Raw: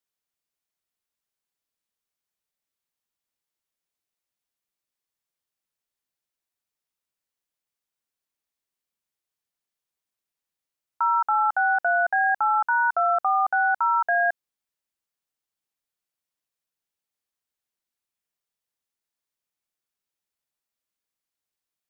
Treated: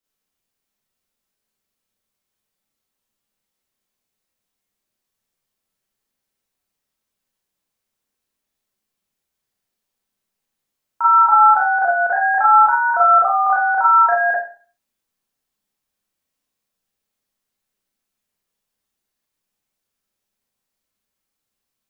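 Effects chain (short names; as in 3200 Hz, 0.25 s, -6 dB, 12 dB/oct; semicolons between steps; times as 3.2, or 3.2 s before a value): low shelf 420 Hz +7.5 dB; Schroeder reverb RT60 0.41 s, combs from 29 ms, DRR -6.5 dB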